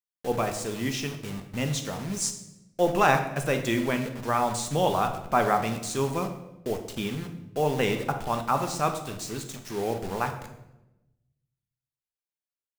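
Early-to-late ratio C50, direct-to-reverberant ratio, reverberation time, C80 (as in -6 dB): 9.0 dB, 5.0 dB, 0.95 s, 11.5 dB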